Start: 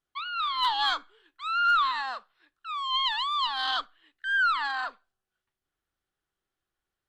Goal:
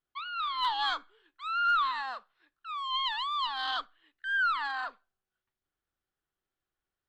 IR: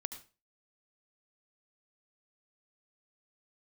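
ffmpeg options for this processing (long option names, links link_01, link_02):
-af "highshelf=frequency=4600:gain=-6,volume=-3dB"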